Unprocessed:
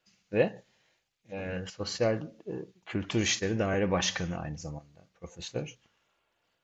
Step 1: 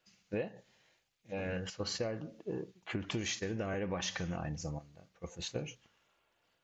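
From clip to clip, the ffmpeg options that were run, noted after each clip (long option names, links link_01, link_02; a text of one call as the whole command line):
ffmpeg -i in.wav -af "acompressor=threshold=-33dB:ratio=10" out.wav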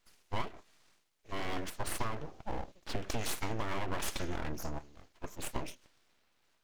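ffmpeg -i in.wav -af "aeval=exprs='abs(val(0))':channel_layout=same,volume=4dB" out.wav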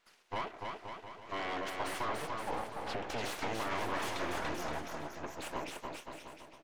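ffmpeg -i in.wav -filter_complex "[0:a]asplit=2[link_01][link_02];[link_02]highpass=frequency=720:poles=1,volume=23dB,asoftclip=type=tanh:threshold=-17.5dB[link_03];[link_01][link_03]amix=inputs=2:normalize=0,lowpass=frequency=2100:poles=1,volume=-6dB,aecho=1:1:290|522|707.6|856.1|974.9:0.631|0.398|0.251|0.158|0.1,volume=-9dB" out.wav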